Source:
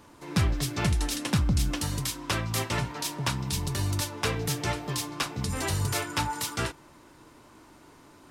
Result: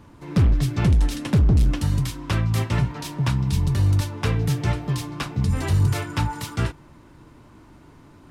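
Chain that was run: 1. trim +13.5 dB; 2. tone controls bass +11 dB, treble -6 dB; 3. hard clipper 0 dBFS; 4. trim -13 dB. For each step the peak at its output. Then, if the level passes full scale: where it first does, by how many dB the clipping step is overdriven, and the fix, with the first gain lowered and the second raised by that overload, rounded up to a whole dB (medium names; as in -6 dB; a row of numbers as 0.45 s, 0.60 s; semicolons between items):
-0.5 dBFS, +8.0 dBFS, 0.0 dBFS, -13.0 dBFS; step 2, 8.0 dB; step 1 +5.5 dB, step 4 -5 dB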